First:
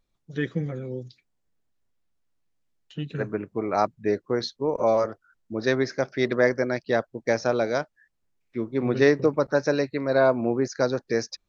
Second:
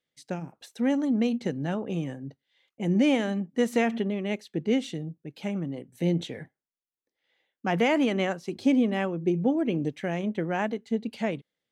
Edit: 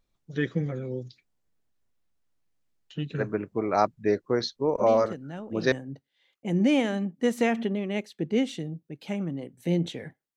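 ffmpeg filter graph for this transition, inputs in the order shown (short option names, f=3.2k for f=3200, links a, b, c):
-filter_complex "[1:a]asplit=2[a][b];[0:a]apad=whole_dur=10.36,atrim=end=10.36,atrim=end=5.722[c];[b]atrim=start=2.068:end=6.71[d];[a]atrim=start=1.16:end=2.07,asetpts=PTS-STARTPTS,volume=-8.5dB,afade=t=in:d=0.004:c=hsin,afade=t=out:st=0.906:d=0.004:c=hsin,adelay=212121S[e];[c][d]acrossfade=d=0.004:c1=hsin:c2=hsin[f];[f][e]amix=inputs=2:normalize=0"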